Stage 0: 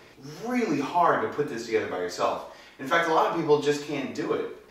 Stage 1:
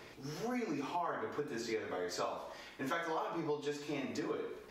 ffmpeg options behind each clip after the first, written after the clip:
-af "acompressor=threshold=-33dB:ratio=6,volume=-2.5dB"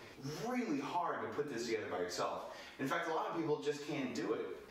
-af "flanger=delay=7.5:depth=8.3:regen=35:speed=1.6:shape=triangular,volume=3.5dB"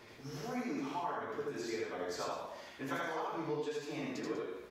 -af "aecho=1:1:81.63|195.3:0.891|0.282,volume=-3dB"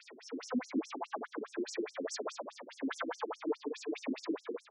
-af "asoftclip=type=tanh:threshold=-31.5dB,afftfilt=real='re*between(b*sr/1024,250*pow(7600/250,0.5+0.5*sin(2*PI*4.8*pts/sr))/1.41,250*pow(7600/250,0.5+0.5*sin(2*PI*4.8*pts/sr))*1.41)':imag='im*between(b*sr/1024,250*pow(7600/250,0.5+0.5*sin(2*PI*4.8*pts/sr))/1.41,250*pow(7600/250,0.5+0.5*sin(2*PI*4.8*pts/sr))*1.41)':win_size=1024:overlap=0.75,volume=10dB"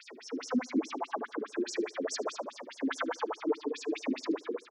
-af "aecho=1:1:75|150:0.0794|0.023,volume=4.5dB"

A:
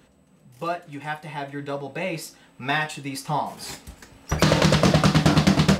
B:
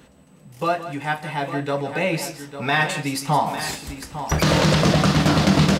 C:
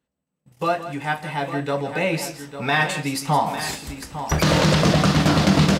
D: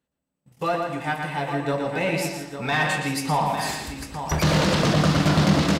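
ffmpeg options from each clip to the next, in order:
-filter_complex "[0:a]alimiter=limit=-15dB:level=0:latency=1:release=22,asplit=2[a][b];[b]aecho=0:1:165|852:0.237|0.282[c];[a][c]amix=inputs=2:normalize=0,volume=6dB"
-af "agate=range=-30dB:threshold=-42dB:ratio=16:detection=peak"
-filter_complex "[0:a]asoftclip=type=tanh:threshold=-11.5dB,asplit=2[a][b];[b]adelay=117,lowpass=f=4.6k:p=1,volume=-4dB,asplit=2[c][d];[d]adelay=117,lowpass=f=4.6k:p=1,volume=0.36,asplit=2[e][f];[f]adelay=117,lowpass=f=4.6k:p=1,volume=0.36,asplit=2[g][h];[h]adelay=117,lowpass=f=4.6k:p=1,volume=0.36,asplit=2[i][j];[j]adelay=117,lowpass=f=4.6k:p=1,volume=0.36[k];[a][c][e][g][i][k]amix=inputs=6:normalize=0,volume=-2dB"

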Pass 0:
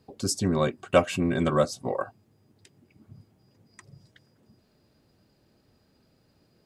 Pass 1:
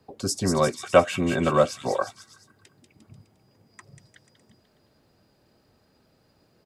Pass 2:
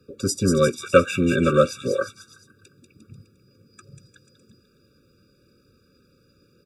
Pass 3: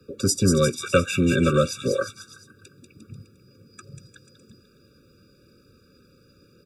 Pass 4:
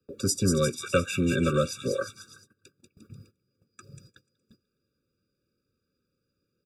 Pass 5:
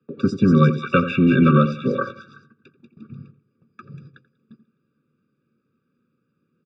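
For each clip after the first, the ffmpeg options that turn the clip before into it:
-filter_complex "[0:a]acrossover=split=260|450|1900[a][b][c][d];[c]acontrast=34[e];[d]aecho=1:1:190|351.5|488.8|605.5|704.6:0.631|0.398|0.251|0.158|0.1[f];[a][b][e][f]amix=inputs=4:normalize=0"
-af "afftfilt=real='re*eq(mod(floor(b*sr/1024/560),2),0)':imag='im*eq(mod(floor(b*sr/1024/560),2),0)':win_size=1024:overlap=0.75,volume=4.5dB"
-filter_complex "[0:a]acrossover=split=170|3000[a][b][c];[b]acompressor=threshold=-27dB:ratio=2[d];[a][d][c]amix=inputs=3:normalize=0,volume=3.5dB"
-af "highshelf=f=10k:g=3.5,agate=range=-18dB:threshold=-48dB:ratio=16:detection=peak,volume=-5dB"
-filter_complex "[0:a]highpass=140,equalizer=f=150:t=q:w=4:g=9,equalizer=f=230:t=q:w=4:g=8,equalizer=f=570:t=q:w=4:g=-6,equalizer=f=1.1k:t=q:w=4:g=9,lowpass=f=3.1k:w=0.5412,lowpass=f=3.1k:w=1.3066,asplit=2[a][b];[b]adelay=85,lowpass=f=810:p=1,volume=-9.5dB,asplit=2[c][d];[d]adelay=85,lowpass=f=810:p=1,volume=0.3,asplit=2[e][f];[f]adelay=85,lowpass=f=810:p=1,volume=0.3[g];[a][c][e][g]amix=inputs=4:normalize=0,volume=6.5dB"

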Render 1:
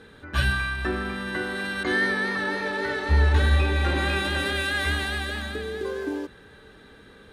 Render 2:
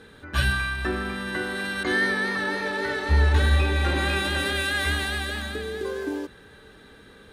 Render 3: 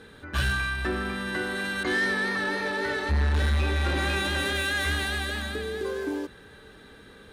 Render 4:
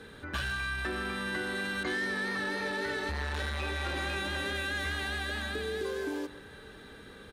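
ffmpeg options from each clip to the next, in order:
-af "highshelf=f=5.9k:g=5"
-af "asoftclip=type=tanh:threshold=-19.5dB"
-filter_complex "[0:a]asplit=2[a][b];[b]adelay=130,highpass=300,lowpass=3.4k,asoftclip=type=hard:threshold=-29.5dB,volume=-15dB[c];[a][c]amix=inputs=2:normalize=0,acrossover=split=380|2100|7100[d][e][f][g];[d]acompressor=threshold=-39dB:ratio=4[h];[e]acompressor=threshold=-36dB:ratio=4[i];[f]acompressor=threshold=-40dB:ratio=4[j];[g]acompressor=threshold=-56dB:ratio=4[k];[h][i][j][k]amix=inputs=4:normalize=0"

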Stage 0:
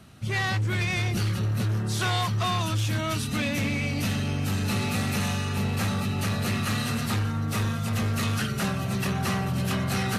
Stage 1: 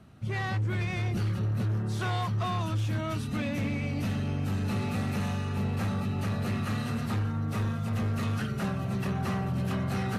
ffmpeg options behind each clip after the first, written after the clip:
-af "highshelf=f=2.2k:g=-11.5,volume=-2.5dB"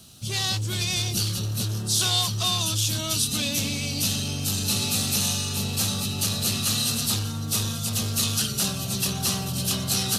-af "aexciter=amount=14.1:drive=5.1:freq=3.1k"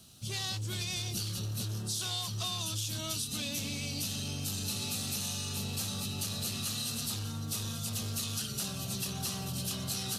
-af "acompressor=threshold=-25dB:ratio=6,volume=-7dB"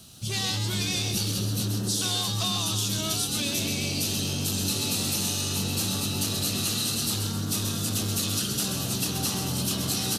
-filter_complex "[0:a]asplit=7[a][b][c][d][e][f][g];[b]adelay=131,afreqshift=92,volume=-6.5dB[h];[c]adelay=262,afreqshift=184,volume=-12.9dB[i];[d]adelay=393,afreqshift=276,volume=-19.3dB[j];[e]adelay=524,afreqshift=368,volume=-25.6dB[k];[f]adelay=655,afreqshift=460,volume=-32dB[l];[g]adelay=786,afreqshift=552,volume=-38.4dB[m];[a][h][i][j][k][l][m]amix=inputs=7:normalize=0,volume=7dB"

